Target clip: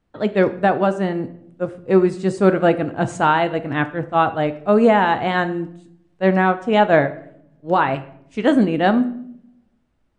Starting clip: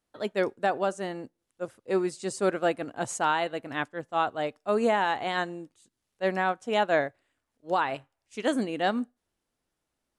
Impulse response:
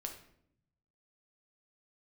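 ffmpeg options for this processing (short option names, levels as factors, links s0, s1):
-filter_complex "[0:a]bass=f=250:g=10,treble=f=4000:g=-13,asplit=2[s0][s1];[1:a]atrim=start_sample=2205[s2];[s1][s2]afir=irnorm=-1:irlink=0,volume=1.06[s3];[s0][s3]amix=inputs=2:normalize=0,volume=1.68" -ar 22050 -c:a libmp3lame -b:a 64k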